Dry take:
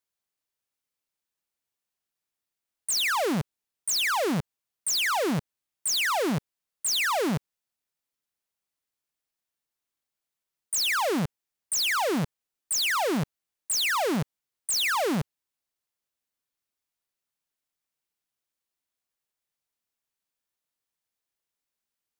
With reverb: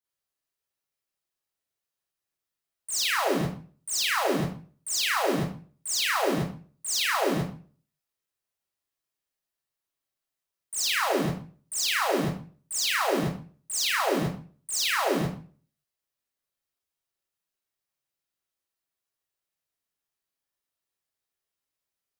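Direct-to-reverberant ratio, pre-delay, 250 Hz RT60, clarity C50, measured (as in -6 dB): -7.5 dB, 33 ms, 0.50 s, 0.5 dB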